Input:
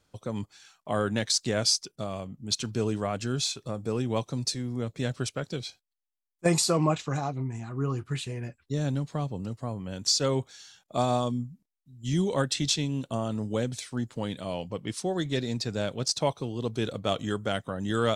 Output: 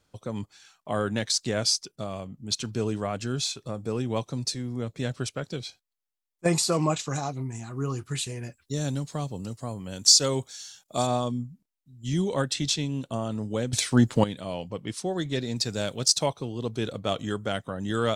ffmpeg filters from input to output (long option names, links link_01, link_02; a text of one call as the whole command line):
ffmpeg -i in.wav -filter_complex "[0:a]asettb=1/sr,asplit=3[link_01][link_02][link_03];[link_01]atrim=end=6.724[link_04];[link_02]atrim=start=6.72:end=11.07,asetpts=PTS-STARTPTS,afade=type=in:duration=0.004:curve=qsin,afade=type=out:start_time=4.346:duration=0.004:curve=qsin,bass=frequency=250:gain=-1,treble=frequency=4000:gain=11[link_05];[link_03]atrim=start=11.066[link_06];[link_04][link_05]acrossfade=duration=0.004:curve1=hsin:curve2=qsin[link_07];[link_07][link_06]acrossfade=duration=0.004:curve1=qsin:curve2=hsin,asettb=1/sr,asplit=3[link_08][link_09][link_10];[link_08]atrim=end=15.564[link_11];[link_09]atrim=start=15.56:end=16.26,asetpts=PTS-STARTPTS,afade=type=in:duration=0.004:curve=qsin,afade=type=out:start_time=0.696:duration=0.004:curve=qsin,highshelf=frequency=4400:gain=11.5[link_12];[link_10]atrim=start=16.256[link_13];[link_11][link_12]acrossfade=duration=0.004:curve1=hsin:curve2=qsin[link_14];[link_14][link_13]acrossfade=duration=0.004:curve1=qsin:curve2=hsin,asplit=3[link_15][link_16][link_17];[link_15]atrim=end=13.732[link_18];[link_16]atrim=start=13.728:end=14.242,asetpts=PTS-STARTPTS,volume=12dB[link_19];[link_17]atrim=start=14.238[link_20];[link_18][link_19]acrossfade=duration=0.004:curve1=hsin:curve2=hsin[link_21];[link_21][link_20]acrossfade=duration=0.004:curve1=hsin:curve2=hsin" out.wav